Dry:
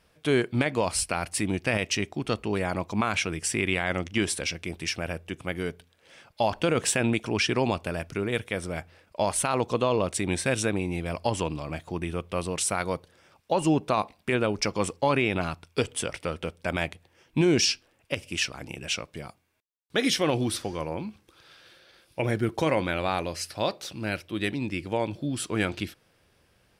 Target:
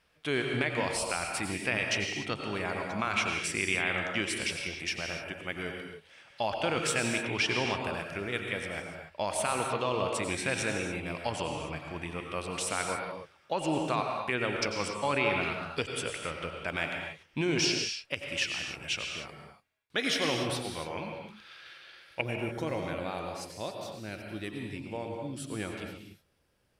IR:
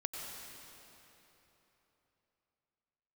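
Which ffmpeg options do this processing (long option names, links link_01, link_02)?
-filter_complex "[0:a]asetnsamples=nb_out_samples=441:pad=0,asendcmd='20.93 equalizer g 14.5;22.21 equalizer g -2.5',equalizer=frequency=2200:width=0.46:gain=7.5[link_01];[1:a]atrim=start_sample=2205,afade=type=out:start_time=0.35:duration=0.01,atrim=end_sample=15876[link_02];[link_01][link_02]afir=irnorm=-1:irlink=0,volume=-7.5dB"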